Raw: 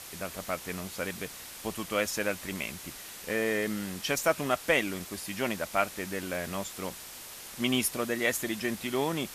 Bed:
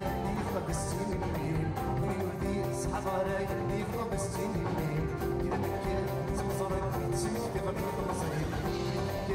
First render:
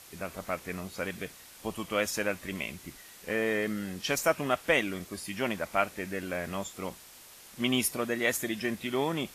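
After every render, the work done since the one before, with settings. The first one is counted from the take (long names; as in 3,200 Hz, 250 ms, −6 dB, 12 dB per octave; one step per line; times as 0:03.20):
noise reduction from a noise print 7 dB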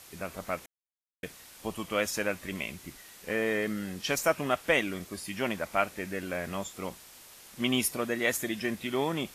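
0:00.66–0:01.23: silence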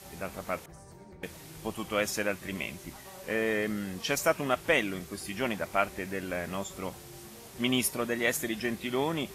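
mix in bed −17.5 dB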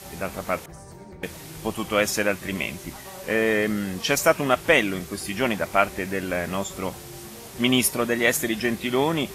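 level +7.5 dB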